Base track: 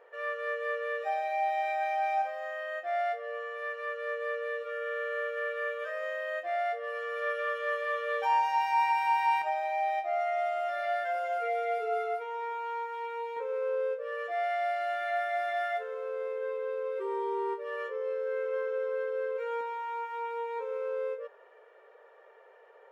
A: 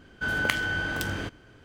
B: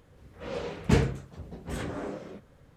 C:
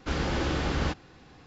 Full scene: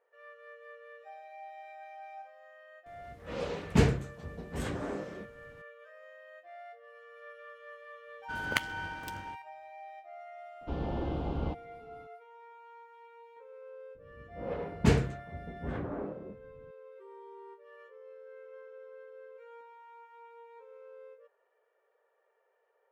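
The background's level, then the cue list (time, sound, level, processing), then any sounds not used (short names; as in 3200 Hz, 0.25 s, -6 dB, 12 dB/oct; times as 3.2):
base track -17.5 dB
2.86 add B -1 dB
8.07 add A -2.5 dB + upward expander 2.5:1, over -41 dBFS
10.61 add C -5 dB + EQ curve 870 Hz 0 dB, 1900 Hz -23 dB, 3000 Hz -10 dB, 6500 Hz -27 dB
13.95 add B -1.5 dB + low-pass opened by the level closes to 350 Hz, open at -22 dBFS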